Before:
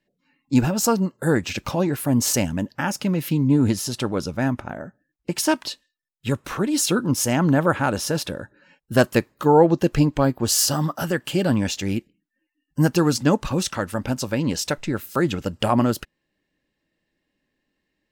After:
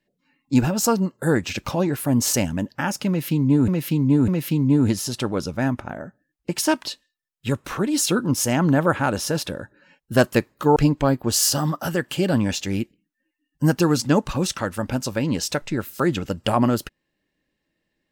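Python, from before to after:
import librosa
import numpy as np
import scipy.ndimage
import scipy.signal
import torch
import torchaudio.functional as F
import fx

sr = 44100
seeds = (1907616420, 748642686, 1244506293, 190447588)

y = fx.edit(x, sr, fx.repeat(start_s=3.08, length_s=0.6, count=3),
    fx.cut(start_s=9.56, length_s=0.36), tone=tone)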